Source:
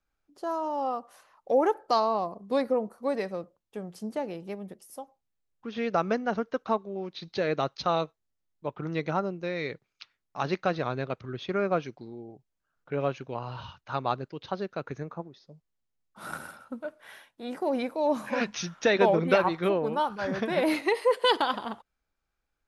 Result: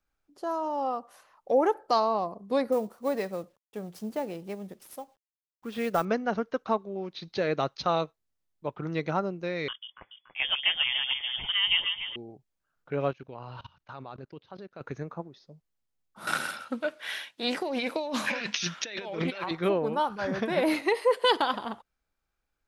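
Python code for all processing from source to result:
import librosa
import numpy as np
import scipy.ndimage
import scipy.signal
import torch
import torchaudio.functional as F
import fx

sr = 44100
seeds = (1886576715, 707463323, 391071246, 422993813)

y = fx.chain(x, sr, fx.cvsd(bps=64000),
    fx.resample_bad(factor=2, down='none', up='hold'), at=(2.72, 6.05))
y = fx.chain(y, sr, fx.echo_alternate(ms=143, hz=810.0, feedback_pct=65, wet_db=-4.0),
    fx.freq_invert(carrier_hz=3400), at=(9.68, 12.16))
y = fx.chain(y, sr, fx.lowpass(hz=5400.0, slope=12),
    fx.level_steps(step_db=21), at=(13.11, 14.81))
y = fx.chain(y, sr, fx.weighting(curve='D'),
    fx.over_compress(threshold_db=-32.0, ratio=-1.0),
    fx.doppler_dist(depth_ms=0.13), at=(16.27, 19.51))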